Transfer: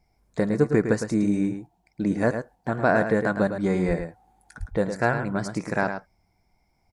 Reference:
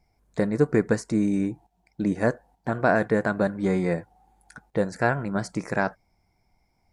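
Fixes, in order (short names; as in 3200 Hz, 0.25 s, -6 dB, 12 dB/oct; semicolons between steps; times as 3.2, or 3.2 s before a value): de-plosive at 3.87/4.59; inverse comb 0.108 s -8 dB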